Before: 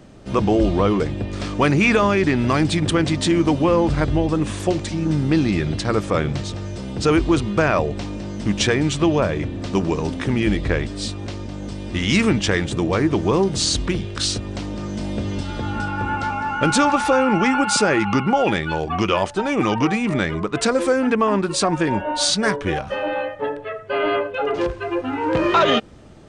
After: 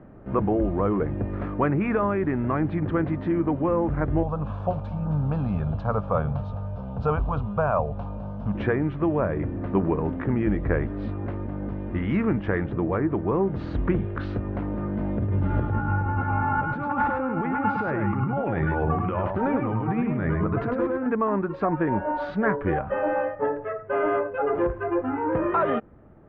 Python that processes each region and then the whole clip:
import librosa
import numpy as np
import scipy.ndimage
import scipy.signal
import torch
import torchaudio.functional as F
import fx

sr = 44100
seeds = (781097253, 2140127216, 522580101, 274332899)

y = fx.chain(x, sr, fx.high_shelf(hz=3100.0, db=8.5),
    fx.fixed_phaser(hz=810.0, stages=4), at=(4.23, 8.55))
y = fx.chain(y, sr, fx.peak_eq(hz=110.0, db=10.0, octaves=0.93),
    fx.over_compress(threshold_db=-23.0, ratio=-1.0),
    fx.echo_single(ms=103, db=-4.5), at=(15.18, 21.06))
y = scipy.signal.sosfilt(scipy.signal.butter(4, 1700.0, 'lowpass', fs=sr, output='sos'), y)
y = fx.rider(y, sr, range_db=3, speed_s=0.5)
y = y * librosa.db_to_amplitude(-3.5)